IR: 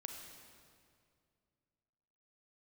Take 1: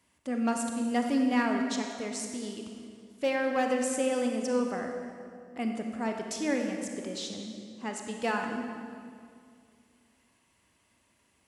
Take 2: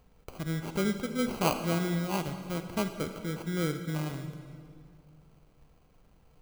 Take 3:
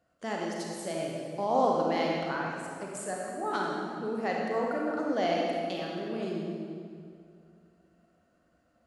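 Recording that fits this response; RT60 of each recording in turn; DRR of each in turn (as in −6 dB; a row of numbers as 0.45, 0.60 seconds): 1; 2.3, 2.3, 2.3 seconds; 3.0, 7.5, −2.5 decibels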